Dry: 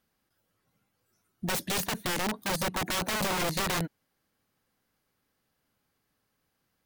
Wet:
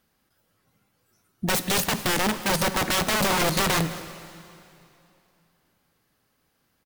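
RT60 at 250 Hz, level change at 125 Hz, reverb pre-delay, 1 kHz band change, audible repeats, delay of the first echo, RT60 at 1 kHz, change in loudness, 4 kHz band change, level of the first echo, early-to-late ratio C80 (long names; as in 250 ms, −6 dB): 2.8 s, +6.5 dB, 6 ms, +7.0 dB, 1, 208 ms, 2.8 s, +7.0 dB, +7.0 dB, −18.5 dB, 12.0 dB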